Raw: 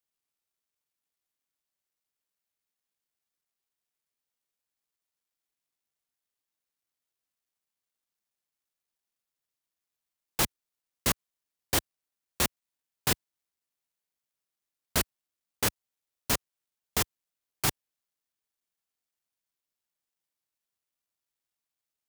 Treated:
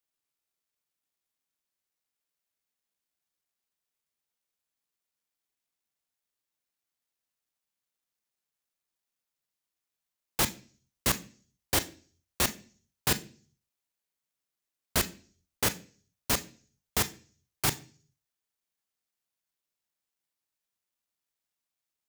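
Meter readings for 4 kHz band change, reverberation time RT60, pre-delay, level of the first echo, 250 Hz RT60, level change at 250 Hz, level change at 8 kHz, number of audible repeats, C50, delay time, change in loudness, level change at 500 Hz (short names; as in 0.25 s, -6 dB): +0.5 dB, 0.45 s, 28 ms, none, 0.55 s, +0.5 dB, +0.5 dB, none, 17.5 dB, none, +0.5 dB, 0.0 dB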